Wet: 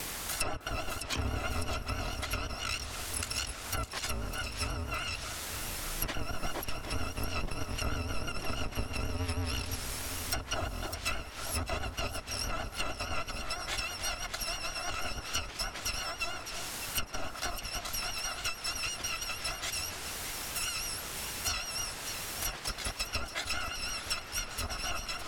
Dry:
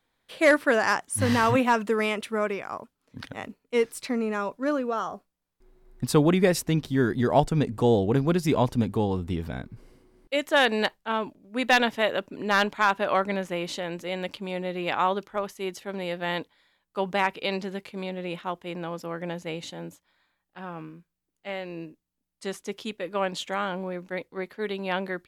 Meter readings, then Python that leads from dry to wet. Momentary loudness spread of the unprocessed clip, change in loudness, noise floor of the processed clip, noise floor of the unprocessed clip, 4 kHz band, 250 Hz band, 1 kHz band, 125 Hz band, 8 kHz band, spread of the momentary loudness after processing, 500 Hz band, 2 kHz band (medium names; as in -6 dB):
17 LU, -8.5 dB, -44 dBFS, -80 dBFS, 0.0 dB, -17.0 dB, -11.0 dB, -8.0 dB, +4.5 dB, 3 LU, -17.0 dB, -8.5 dB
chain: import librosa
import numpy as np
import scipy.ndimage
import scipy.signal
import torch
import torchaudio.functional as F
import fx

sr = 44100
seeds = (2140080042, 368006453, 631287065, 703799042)

p1 = fx.bit_reversed(x, sr, seeds[0], block=256)
p2 = fx.high_shelf(p1, sr, hz=4500.0, db=7.0)
p3 = fx.quant_dither(p2, sr, seeds[1], bits=6, dither='triangular')
p4 = p2 + F.gain(torch.from_numpy(p3), -9.5).numpy()
p5 = np.clip(p4, -10.0 ** (-14.5 / 20.0), 10.0 ** (-14.5 / 20.0))
p6 = fx.vibrato(p5, sr, rate_hz=6.2, depth_cents=70.0)
p7 = fx.env_lowpass_down(p6, sr, base_hz=940.0, full_db=-16.5)
p8 = p7 + fx.echo_alternate(p7, sr, ms=303, hz=1600.0, feedback_pct=72, wet_db=-11.0, dry=0)
p9 = fx.band_squash(p8, sr, depth_pct=70)
y = F.gain(torch.from_numpy(p9), 3.0).numpy()